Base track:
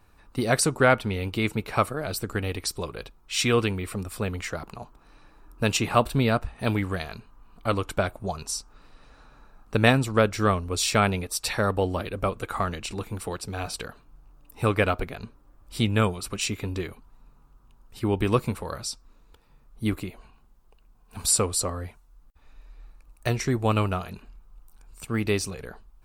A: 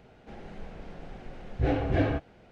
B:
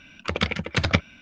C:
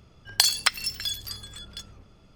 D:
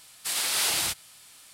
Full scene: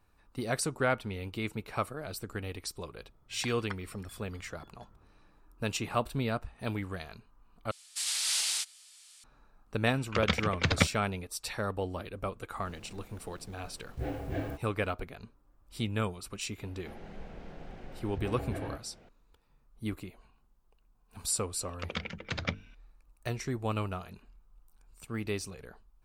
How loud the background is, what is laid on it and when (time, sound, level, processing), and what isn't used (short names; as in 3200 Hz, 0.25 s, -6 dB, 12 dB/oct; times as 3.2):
base track -9.5 dB
3.04 add C -13 dB + polynomial smoothing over 41 samples
7.71 replace with D -14 dB + weighting filter ITU-R 468
9.87 add B -5 dB
12.38 add A -9.5 dB + level-crossing sampler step -44 dBFS
16.58 add A -2.5 dB + compressor 10:1, threshold -31 dBFS
21.54 add B -12 dB + notches 50/100/150/200/250/300/350/400/450 Hz